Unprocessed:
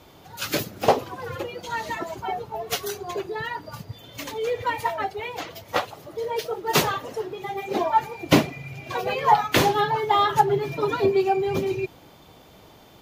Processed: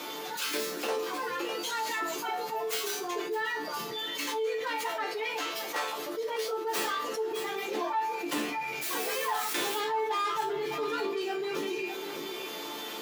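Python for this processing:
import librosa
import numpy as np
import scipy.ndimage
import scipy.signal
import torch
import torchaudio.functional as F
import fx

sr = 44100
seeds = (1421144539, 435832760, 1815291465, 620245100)

p1 = fx.tracing_dist(x, sr, depth_ms=0.21)
p2 = fx.high_shelf(p1, sr, hz=6300.0, db=7.5, at=(1.51, 2.74))
p3 = p2 + fx.echo_single(p2, sr, ms=606, db=-19.5, dry=0)
p4 = fx.quant_dither(p3, sr, seeds[0], bits=6, dither='triangular', at=(8.81, 9.77), fade=0.02)
p5 = fx.peak_eq(p4, sr, hz=660.0, db=-8.5, octaves=0.75)
p6 = 10.0 ** (-17.5 / 20.0) * np.tanh(p5 / 10.0 ** (-17.5 / 20.0))
p7 = scipy.signal.sosfilt(scipy.signal.butter(4, 290.0, 'highpass', fs=sr, output='sos'), p6)
p8 = fx.resonator_bank(p7, sr, root=50, chord='minor', decay_s=0.28)
p9 = fx.env_flatten(p8, sr, amount_pct=70)
y = p9 * 10.0 ** (1.5 / 20.0)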